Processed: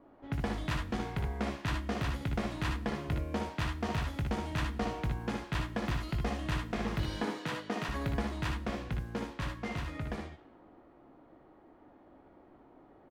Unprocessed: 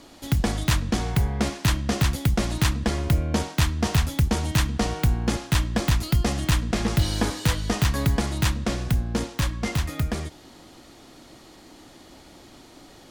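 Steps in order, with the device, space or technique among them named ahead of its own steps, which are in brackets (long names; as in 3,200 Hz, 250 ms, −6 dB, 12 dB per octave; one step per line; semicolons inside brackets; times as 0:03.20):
0:07.16–0:07.89: high-pass filter 150 Hz 24 dB per octave
bass and treble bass −6 dB, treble −15 dB
cassette deck with a dynamic noise filter (white noise bed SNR 33 dB; low-pass that shuts in the quiet parts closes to 910 Hz, open at −25 dBFS)
ambience of single reflections 19 ms −9.5 dB, 61 ms −7.5 dB, 75 ms −7 dB
level −8.5 dB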